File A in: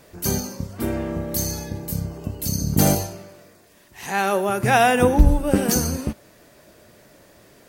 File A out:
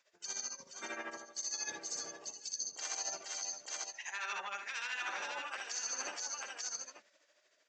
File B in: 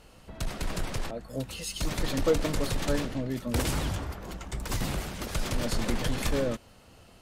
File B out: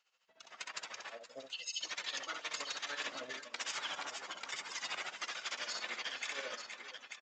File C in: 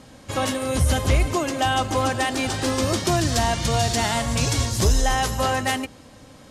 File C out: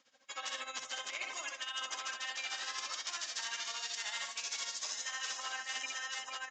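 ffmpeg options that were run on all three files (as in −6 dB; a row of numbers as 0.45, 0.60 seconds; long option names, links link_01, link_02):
-af "tremolo=f=13:d=0.75,bandreject=frequency=4200:width=24,afftdn=noise_reduction=14:noise_floor=-43,aresample=16000,asoftclip=type=tanh:threshold=-15dB,aresample=44100,dynaudnorm=framelen=140:gausssize=17:maxgain=11dB,afftfilt=real='re*lt(hypot(re,im),0.891)':imag='im*lt(hypot(re,im),0.891)':win_size=1024:overlap=0.75,highpass=1500,aecho=1:1:64|469|479|891:0.531|0.126|0.15|0.211,areverse,acompressor=threshold=-37dB:ratio=12,areverse"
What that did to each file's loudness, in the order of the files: −18.0, −9.5, −16.5 LU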